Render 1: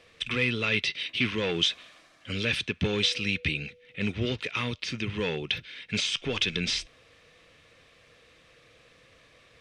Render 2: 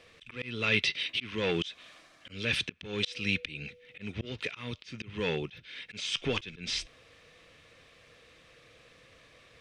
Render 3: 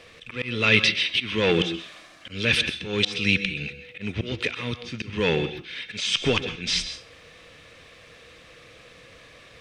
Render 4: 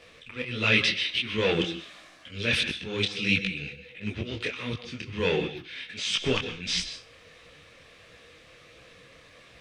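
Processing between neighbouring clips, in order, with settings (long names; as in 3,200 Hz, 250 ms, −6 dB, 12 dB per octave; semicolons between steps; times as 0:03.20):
volume swells 280 ms
convolution reverb RT60 0.35 s, pre-delay 123 ms, DRR 10.5 dB; level +8.5 dB
micro pitch shift up and down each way 51 cents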